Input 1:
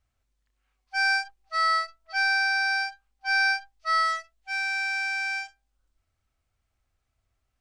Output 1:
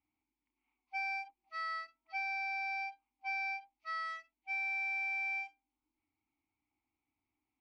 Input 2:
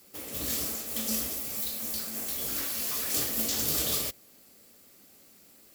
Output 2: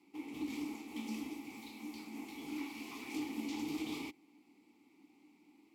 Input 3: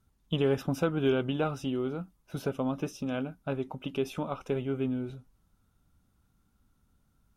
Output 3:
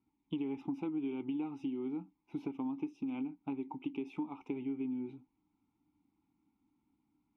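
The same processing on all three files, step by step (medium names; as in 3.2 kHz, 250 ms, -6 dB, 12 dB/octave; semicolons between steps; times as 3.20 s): vowel filter u; compression, threshold -43 dBFS; trim +8.5 dB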